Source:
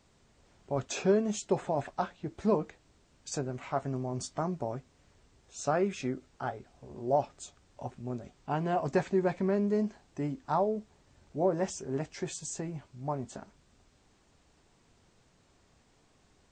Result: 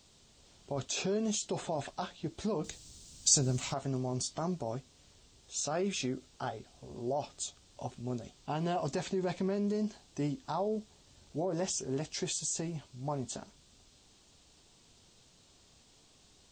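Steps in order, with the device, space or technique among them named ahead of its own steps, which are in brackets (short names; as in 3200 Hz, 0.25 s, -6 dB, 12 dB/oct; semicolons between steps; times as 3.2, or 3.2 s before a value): over-bright horn tweeter (resonant high shelf 2600 Hz +8 dB, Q 1.5; limiter -25.5 dBFS, peak gain reduction 9.5 dB); 2.64–3.74 tone controls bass +9 dB, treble +14 dB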